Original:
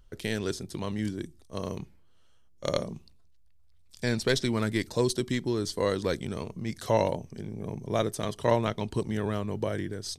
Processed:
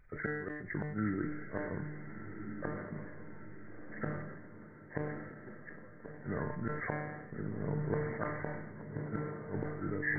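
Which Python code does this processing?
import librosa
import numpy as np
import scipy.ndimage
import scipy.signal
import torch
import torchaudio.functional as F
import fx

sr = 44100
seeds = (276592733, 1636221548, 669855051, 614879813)

y = fx.freq_compress(x, sr, knee_hz=1200.0, ratio=4.0)
y = fx.low_shelf(y, sr, hz=78.0, db=-3.5)
y = fx.gate_flip(y, sr, shuts_db=-20.0, range_db=-32)
y = fx.comb_fb(y, sr, f0_hz=150.0, decay_s=0.98, harmonics='all', damping=0.0, mix_pct=80)
y = fx.echo_diffused(y, sr, ms=1395, feedback_pct=55, wet_db=-8)
y = fx.sustainer(y, sr, db_per_s=42.0)
y = y * librosa.db_to_amplitude(10.0)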